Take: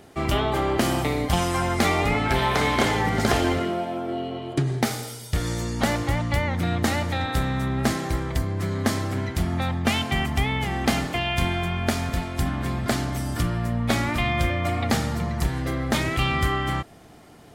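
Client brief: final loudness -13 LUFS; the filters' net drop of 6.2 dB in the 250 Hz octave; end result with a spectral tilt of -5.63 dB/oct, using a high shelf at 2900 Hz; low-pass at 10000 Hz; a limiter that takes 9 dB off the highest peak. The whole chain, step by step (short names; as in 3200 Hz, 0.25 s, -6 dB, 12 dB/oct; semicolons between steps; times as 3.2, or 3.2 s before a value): LPF 10000 Hz; bell 250 Hz -8.5 dB; high shelf 2900 Hz -6 dB; gain +15.5 dB; limiter -2.5 dBFS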